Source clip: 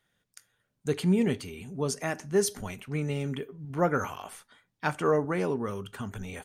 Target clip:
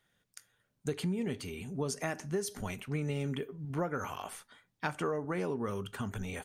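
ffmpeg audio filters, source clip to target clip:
ffmpeg -i in.wav -af "acompressor=threshold=-30dB:ratio=10" out.wav

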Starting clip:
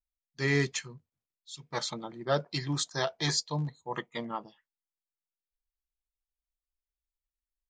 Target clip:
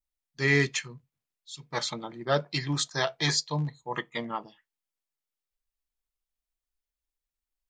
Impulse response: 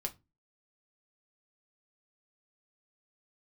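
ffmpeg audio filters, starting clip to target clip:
-filter_complex "[0:a]adynamicequalizer=threshold=0.00501:dfrequency=2300:dqfactor=1.2:tfrequency=2300:tqfactor=1.2:attack=5:release=100:ratio=0.375:range=2.5:mode=boostabove:tftype=bell,asplit=2[link_01][link_02];[1:a]atrim=start_sample=2205,afade=type=out:start_time=0.15:duration=0.01,atrim=end_sample=7056[link_03];[link_02][link_03]afir=irnorm=-1:irlink=0,volume=-12dB[link_04];[link_01][link_04]amix=inputs=2:normalize=0"

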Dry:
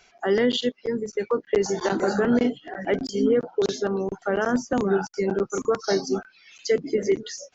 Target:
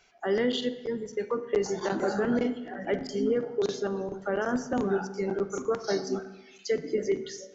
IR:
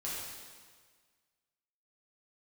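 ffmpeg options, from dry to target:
-filter_complex "[0:a]asplit=2[link_01][link_02];[link_02]highshelf=frequency=3700:gain=-11[link_03];[1:a]atrim=start_sample=2205,asetrate=66150,aresample=44100[link_04];[link_03][link_04]afir=irnorm=-1:irlink=0,volume=-5dB[link_05];[link_01][link_05]amix=inputs=2:normalize=0,volume=-7dB"

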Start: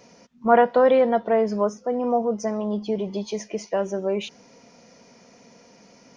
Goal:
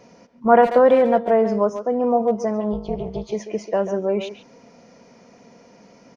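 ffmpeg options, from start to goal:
ffmpeg -i in.wav -filter_complex "[0:a]highshelf=frequency=2500:gain=-8.5,asplit=2[link_01][link_02];[link_02]adelay=140,highpass=300,lowpass=3400,asoftclip=type=hard:threshold=-14.5dB,volume=-10dB[link_03];[link_01][link_03]amix=inputs=2:normalize=0,asplit=3[link_04][link_05][link_06];[link_04]afade=type=out:start_time=2.72:duration=0.02[link_07];[link_05]tremolo=f=260:d=1,afade=type=in:start_time=2.72:duration=0.02,afade=type=out:start_time=3.31:duration=0.02[link_08];[link_06]afade=type=in:start_time=3.31:duration=0.02[link_09];[link_07][link_08][link_09]amix=inputs=3:normalize=0,volume=3.5dB" out.wav

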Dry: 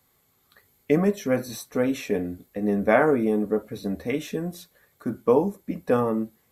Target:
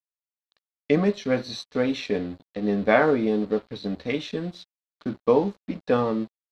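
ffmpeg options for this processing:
ffmpeg -i in.wav -af "aeval=exprs='sgn(val(0))*max(abs(val(0))-0.00501,0)':channel_layout=same,lowpass=frequency=4100:width_type=q:width=3.4" out.wav

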